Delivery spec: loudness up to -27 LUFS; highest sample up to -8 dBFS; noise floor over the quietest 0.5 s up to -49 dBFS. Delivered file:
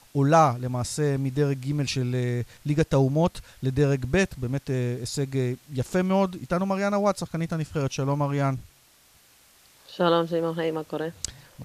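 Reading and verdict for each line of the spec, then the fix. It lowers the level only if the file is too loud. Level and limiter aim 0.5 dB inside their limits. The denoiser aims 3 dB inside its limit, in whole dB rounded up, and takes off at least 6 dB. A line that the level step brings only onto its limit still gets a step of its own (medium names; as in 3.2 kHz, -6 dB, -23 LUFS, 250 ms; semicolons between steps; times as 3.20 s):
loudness -25.5 LUFS: fail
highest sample -7.5 dBFS: fail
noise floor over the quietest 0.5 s -58 dBFS: pass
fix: trim -2 dB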